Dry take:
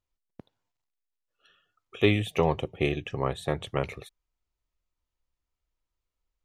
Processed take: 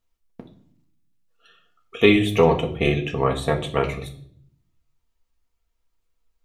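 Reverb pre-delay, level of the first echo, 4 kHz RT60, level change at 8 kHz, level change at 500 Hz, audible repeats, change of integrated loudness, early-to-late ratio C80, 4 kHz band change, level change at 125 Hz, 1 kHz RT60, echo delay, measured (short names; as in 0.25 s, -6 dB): 4 ms, none, 0.50 s, +7.0 dB, +8.0 dB, none, +8.0 dB, 16.0 dB, +7.5 dB, +5.5 dB, 0.50 s, none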